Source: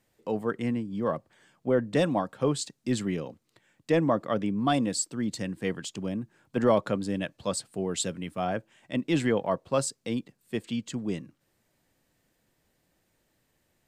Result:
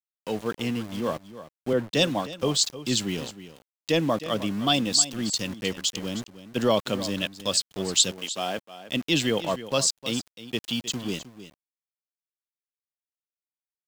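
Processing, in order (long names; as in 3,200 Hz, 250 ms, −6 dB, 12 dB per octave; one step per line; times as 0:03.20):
flat-topped bell 4,400 Hz +13.5 dB
centre clipping without the shift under −36 dBFS
0:08.11–0:08.57: high-pass filter 500 Hz → 210 Hz 12 dB per octave
single-tap delay 311 ms −14 dB
0:01.73–0:02.43: multiband upward and downward expander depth 40%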